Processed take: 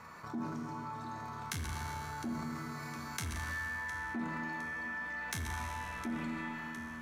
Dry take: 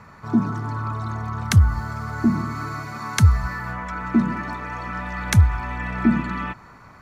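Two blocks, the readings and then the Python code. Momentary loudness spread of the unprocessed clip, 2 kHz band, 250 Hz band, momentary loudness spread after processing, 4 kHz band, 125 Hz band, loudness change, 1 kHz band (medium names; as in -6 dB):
12 LU, -8.0 dB, -17.5 dB, 5 LU, -12.0 dB, -23.0 dB, -16.5 dB, -12.0 dB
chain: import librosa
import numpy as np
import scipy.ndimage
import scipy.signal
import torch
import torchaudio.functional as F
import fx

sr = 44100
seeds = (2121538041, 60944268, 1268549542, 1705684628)

p1 = fx.high_shelf(x, sr, hz=6100.0, db=7.5)
p2 = fx.transient(p1, sr, attack_db=6, sustain_db=10)
p3 = fx.comb_fb(p2, sr, f0_hz=80.0, decay_s=1.5, harmonics='all', damping=0.0, mix_pct=90)
p4 = p3 + fx.echo_feedback(p3, sr, ms=710, feedback_pct=46, wet_db=-20.0, dry=0)
p5 = 10.0 ** (-22.5 / 20.0) * np.tanh(p4 / 10.0 ** (-22.5 / 20.0))
p6 = fx.low_shelf(p5, sr, hz=190.0, db=-11.5)
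p7 = fx.rev_spring(p6, sr, rt60_s=2.1, pass_ms=(34,), chirp_ms=35, drr_db=4.5)
p8 = fx.env_flatten(p7, sr, amount_pct=50)
y = F.gain(torch.from_numpy(p8), -6.0).numpy()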